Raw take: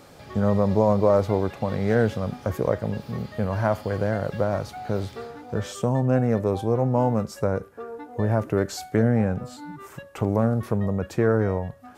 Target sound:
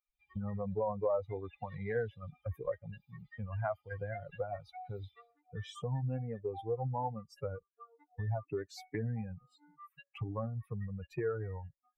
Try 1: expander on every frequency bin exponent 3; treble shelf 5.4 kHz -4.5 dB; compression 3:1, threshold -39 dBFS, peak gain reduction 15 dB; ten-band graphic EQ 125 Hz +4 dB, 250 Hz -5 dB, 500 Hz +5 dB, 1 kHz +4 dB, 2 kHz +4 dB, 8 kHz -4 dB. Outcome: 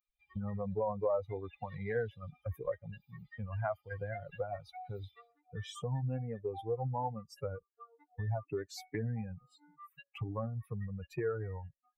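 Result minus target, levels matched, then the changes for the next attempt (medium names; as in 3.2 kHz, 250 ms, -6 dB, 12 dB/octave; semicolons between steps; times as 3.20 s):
8 kHz band +5.0 dB
change: treble shelf 5.4 kHz -12.5 dB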